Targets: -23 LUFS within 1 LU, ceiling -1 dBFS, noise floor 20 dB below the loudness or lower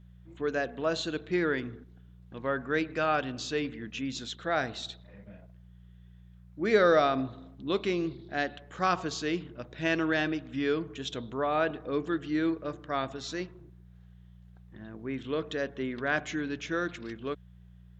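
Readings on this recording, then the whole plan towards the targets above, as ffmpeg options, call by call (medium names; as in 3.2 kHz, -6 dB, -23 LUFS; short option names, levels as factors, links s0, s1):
hum 60 Hz; highest harmonic 180 Hz; hum level -51 dBFS; loudness -31.0 LUFS; peak level -11.0 dBFS; loudness target -23.0 LUFS
-> -af "bandreject=f=60:t=h:w=4,bandreject=f=120:t=h:w=4,bandreject=f=180:t=h:w=4"
-af "volume=2.51"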